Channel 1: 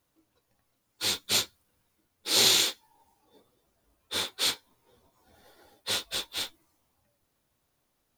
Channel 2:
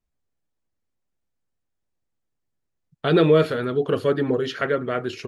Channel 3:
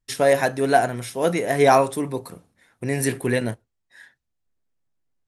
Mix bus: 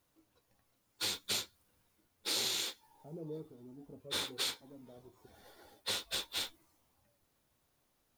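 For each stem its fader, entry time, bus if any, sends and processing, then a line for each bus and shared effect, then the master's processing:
−1.0 dB, 0.00 s, no send, no processing
−9.0 dB, 0.00 s, no send, formant resonators in series u; parametric band 320 Hz −7 dB 0.82 octaves; flanger whose copies keep moving one way falling 1.1 Hz
muted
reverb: not used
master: downward compressor 6 to 1, threshold −33 dBFS, peak gain reduction 13.5 dB

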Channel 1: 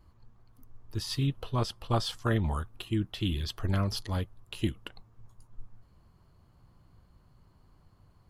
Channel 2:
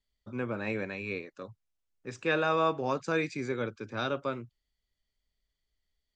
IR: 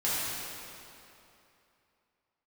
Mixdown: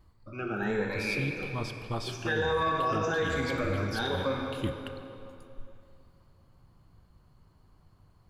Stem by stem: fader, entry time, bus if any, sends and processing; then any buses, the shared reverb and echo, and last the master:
−0.5 dB, 0.00 s, send −22.5 dB, automatic ducking −6 dB, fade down 0.25 s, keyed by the second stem
−7.0 dB, 0.00 s, send −6 dB, rippled gain that drifts along the octave scale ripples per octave 1, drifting +1.2 Hz, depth 20 dB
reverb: on, RT60 2.9 s, pre-delay 3 ms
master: brickwall limiter −20 dBFS, peak gain reduction 8 dB

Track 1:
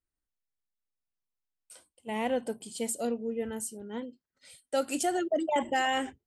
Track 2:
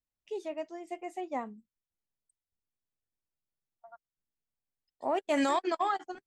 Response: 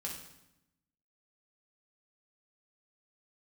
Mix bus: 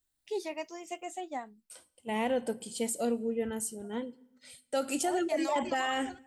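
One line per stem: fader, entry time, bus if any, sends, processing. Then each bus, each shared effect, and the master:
+0.5 dB, 0.00 s, send −16.5 dB, no processing
+1.0 dB, 0.00 s, no send, rippled gain that drifts along the octave scale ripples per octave 0.83, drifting +0.82 Hz, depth 8 dB; high-shelf EQ 3,000 Hz +12 dB; automatic ducking −11 dB, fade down 0.75 s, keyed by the first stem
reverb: on, RT60 0.85 s, pre-delay 3 ms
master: brickwall limiter −21.5 dBFS, peak gain reduction 5.5 dB

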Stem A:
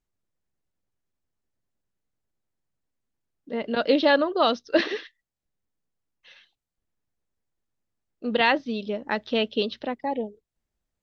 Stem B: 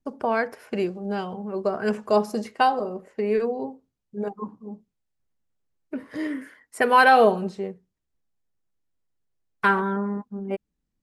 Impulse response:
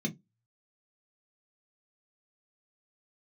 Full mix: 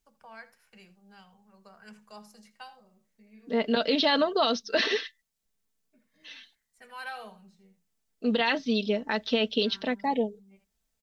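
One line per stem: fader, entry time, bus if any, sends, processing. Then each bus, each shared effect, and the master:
−1.0 dB, 0.00 s, no send, no echo send, high-shelf EQ 2,600 Hz +10 dB; comb filter 4.5 ms, depth 60%
−12.0 dB, 0.00 s, send −11.5 dB, echo send −19 dB, guitar amp tone stack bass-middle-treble 10-0-10; automatic ducking −20 dB, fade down 0.95 s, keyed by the first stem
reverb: on, RT60 0.15 s, pre-delay 3 ms
echo: single-tap delay 81 ms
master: brickwall limiter −14.5 dBFS, peak gain reduction 11 dB

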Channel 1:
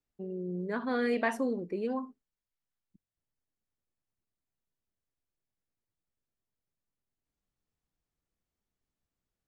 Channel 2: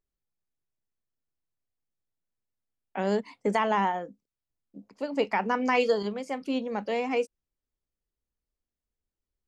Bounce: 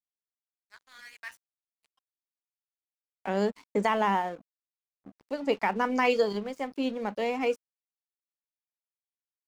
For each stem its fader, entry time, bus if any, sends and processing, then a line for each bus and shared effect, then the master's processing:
−1.5 dB, 0.00 s, no send, Bessel high-pass filter 2,100 Hz, order 4
0.0 dB, 0.30 s, no send, no processing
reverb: not used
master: dead-zone distortion −49 dBFS

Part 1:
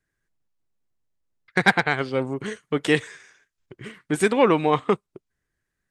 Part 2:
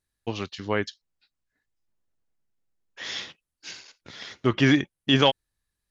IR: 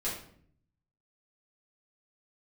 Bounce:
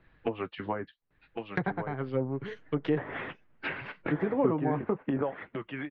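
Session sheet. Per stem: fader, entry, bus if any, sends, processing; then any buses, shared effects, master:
−0.5 dB, 0.00 s, no send, no echo send, parametric band 68 Hz +5 dB 2 octaves; downward compressor 4 to 1, threshold −20 dBFS, peak gain reduction 8.5 dB; multiband upward and downward expander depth 70%
+2.0 dB, 0.00 s, no send, echo send −7 dB, harmonic and percussive parts rebalanced harmonic −10 dB; low-pass filter 2,500 Hz 24 dB per octave; multiband upward and downward compressor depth 100%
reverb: not used
echo: single-tap delay 1,106 ms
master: low-pass filter 4,900 Hz 24 dB per octave; treble cut that deepens with the level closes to 860 Hz, closed at −22 dBFS; flanger 0.72 Hz, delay 5.9 ms, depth 2.5 ms, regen −44%

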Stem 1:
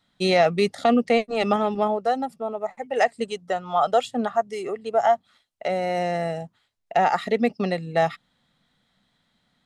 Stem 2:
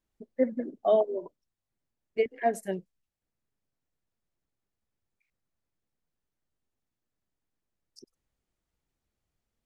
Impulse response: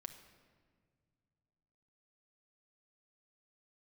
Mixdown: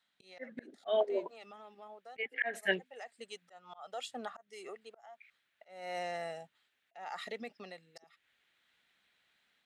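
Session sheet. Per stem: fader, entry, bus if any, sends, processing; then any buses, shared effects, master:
−8.0 dB, 0.00 s, no send, brickwall limiter −16.5 dBFS, peak gain reduction 10 dB; automatic ducking −13 dB, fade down 0.55 s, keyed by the second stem
−1.0 dB, 0.00 s, no send, flat-topped bell 2,400 Hz +14 dB; automatic gain control gain up to 10.5 dB; high-shelf EQ 3,100 Hz −8.5 dB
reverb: not used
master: high-pass filter 1,000 Hz 6 dB per octave; volume swells 311 ms

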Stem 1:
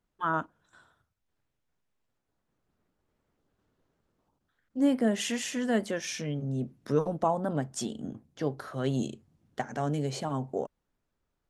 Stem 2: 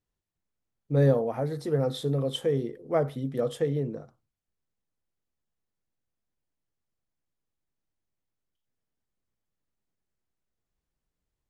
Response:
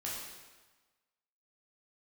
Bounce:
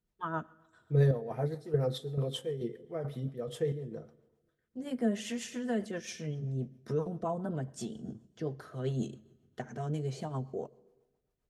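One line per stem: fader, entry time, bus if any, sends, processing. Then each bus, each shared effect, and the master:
−5.0 dB, 0.00 s, send −19 dB, low-shelf EQ 490 Hz +4 dB
−1.5 dB, 0.00 s, send −16.5 dB, square-wave tremolo 2.3 Hz, depth 60%, duty 55%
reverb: on, RT60 1.3 s, pre-delay 10 ms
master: notch comb filter 280 Hz; rotating-speaker cabinet horn 7.5 Hz

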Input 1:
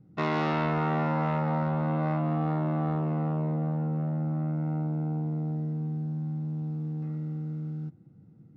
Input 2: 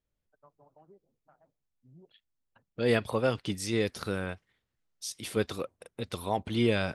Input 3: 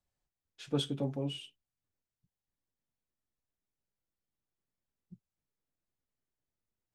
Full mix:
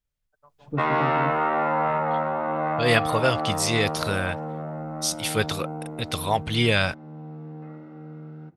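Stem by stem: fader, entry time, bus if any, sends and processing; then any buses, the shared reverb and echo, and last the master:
+1.0 dB, 0.60 s, no send, three-way crossover with the lows and the highs turned down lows −16 dB, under 410 Hz, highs −18 dB, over 2,800 Hz; flanger 1.1 Hz, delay 3.2 ms, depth 1.4 ms, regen −63%
+0.5 dB, 0.00 s, no send, parametric band 300 Hz −11.5 dB 2.2 octaves
−17.5 dB, 0.00 s, no send, spectral tilt −4.5 dB per octave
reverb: not used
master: automatic gain control gain up to 11.5 dB

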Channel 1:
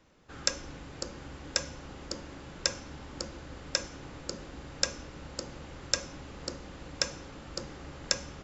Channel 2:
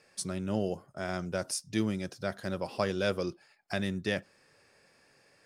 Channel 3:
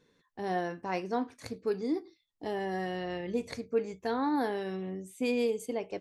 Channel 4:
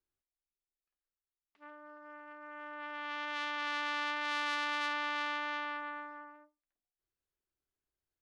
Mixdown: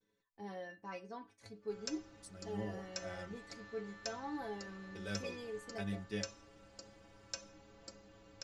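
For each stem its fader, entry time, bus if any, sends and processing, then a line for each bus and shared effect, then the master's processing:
−6.5 dB, 1.40 s, no send, no processing
−11.0 dB, 2.05 s, muted 0:03.36–0:04.95, no send, automatic gain control gain up to 7.5 dB
−4.0 dB, 0.00 s, no send, low-pass filter 9,700 Hz 12 dB per octave; pitch vibrato 0.45 Hz 38 cents
−9.5 dB, 0.00 s, no send, brickwall limiter −28 dBFS, peak gain reduction 7.5 dB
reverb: not used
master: stiff-string resonator 100 Hz, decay 0.24 s, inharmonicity 0.008

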